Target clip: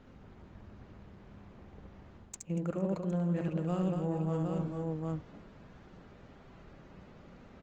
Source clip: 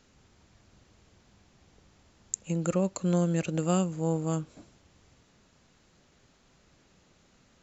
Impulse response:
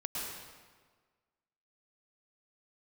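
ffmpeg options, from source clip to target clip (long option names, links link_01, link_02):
-af "adynamicsmooth=sensitivity=1:basefreq=2000,aecho=1:1:70|75|236|445|467|762:0.668|0.251|0.355|0.126|0.158|0.251,areverse,acompressor=threshold=-40dB:ratio=5,areverse,volume=8.5dB" -ar 48000 -c:a libopus -b:a 20k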